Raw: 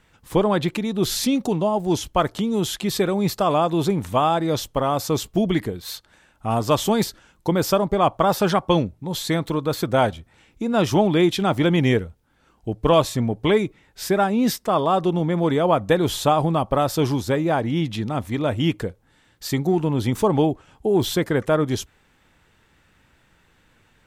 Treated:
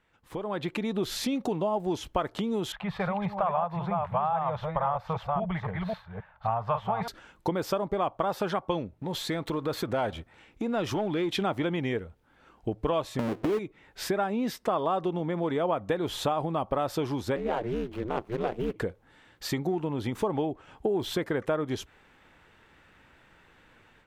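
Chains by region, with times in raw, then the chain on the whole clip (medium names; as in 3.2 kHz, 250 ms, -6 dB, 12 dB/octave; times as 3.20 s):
2.72–7.08 s: chunks repeated in reverse 268 ms, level -5 dB + FFT filter 180 Hz 0 dB, 290 Hz -29 dB, 590 Hz -3 dB, 850 Hz +3 dB, 2.3 kHz -6 dB, 3.5 kHz -14 dB, 7 kHz -29 dB
8.94–11.35 s: waveshaping leveller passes 1 + compression 2:1, threshold -33 dBFS
13.19–13.59 s: square wave that keeps the level + peaking EQ 330 Hz +13 dB 1.5 oct + compression 5:1, threshold -10 dBFS
17.36–18.76 s: median filter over 25 samples + high-pass 180 Hz + ring modulator 120 Hz
whole clip: compression 10:1, threshold -26 dBFS; tone controls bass -6 dB, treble -10 dB; level rider gain up to 12 dB; trim -9 dB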